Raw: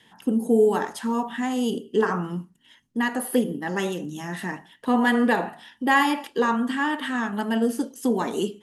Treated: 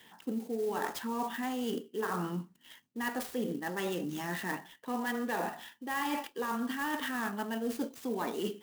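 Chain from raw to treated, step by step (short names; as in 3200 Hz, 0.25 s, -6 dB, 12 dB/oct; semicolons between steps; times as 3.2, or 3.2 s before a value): HPF 250 Hz 6 dB/oct; reverse; compressor 10:1, threshold -31 dBFS, peak gain reduction 16.5 dB; reverse; clock jitter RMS 0.027 ms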